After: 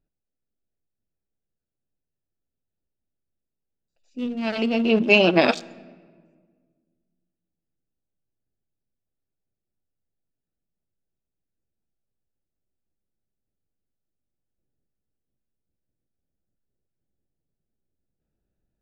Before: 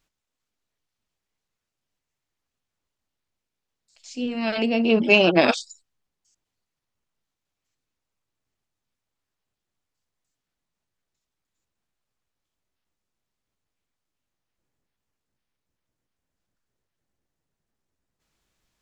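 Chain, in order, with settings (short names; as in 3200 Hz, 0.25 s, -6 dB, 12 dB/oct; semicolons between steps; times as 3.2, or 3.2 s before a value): Wiener smoothing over 41 samples; on a send: reverb RT60 1.7 s, pre-delay 5 ms, DRR 19 dB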